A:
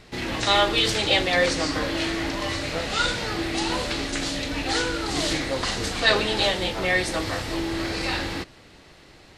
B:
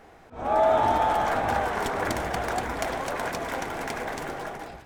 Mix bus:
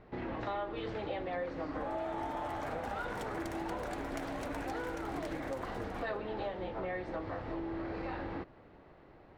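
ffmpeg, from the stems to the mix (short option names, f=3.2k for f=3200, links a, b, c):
-filter_complex "[0:a]lowpass=1k,lowshelf=f=400:g=-6.5,volume=-1.5dB[a];[1:a]adelay=1350,volume=-9dB[b];[a][b]amix=inputs=2:normalize=0,acompressor=threshold=-36dB:ratio=4"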